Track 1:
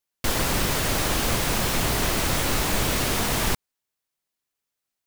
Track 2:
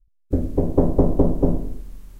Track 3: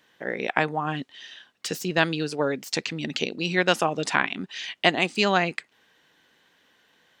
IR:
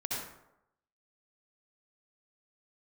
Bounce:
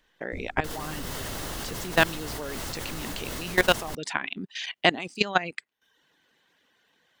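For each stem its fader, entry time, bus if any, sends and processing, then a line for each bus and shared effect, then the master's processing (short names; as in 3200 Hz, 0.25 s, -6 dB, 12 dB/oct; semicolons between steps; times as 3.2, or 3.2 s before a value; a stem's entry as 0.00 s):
-3.0 dB, 0.40 s, no send, notch 2400 Hz, Q 10
-5.0 dB, 0.00 s, no send, band shelf 5100 Hz +11.5 dB; auto duck -16 dB, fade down 1.35 s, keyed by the third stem
+3.0 dB, 0.00 s, no send, reverb removal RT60 0.63 s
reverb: off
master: level quantiser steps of 17 dB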